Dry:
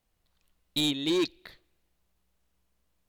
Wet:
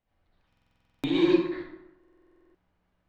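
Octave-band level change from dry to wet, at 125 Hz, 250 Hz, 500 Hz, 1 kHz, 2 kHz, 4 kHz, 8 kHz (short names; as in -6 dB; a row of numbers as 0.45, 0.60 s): +1.5 dB, +5.0 dB, +5.0 dB, +4.5 dB, +1.5 dB, -8.5 dB, under -15 dB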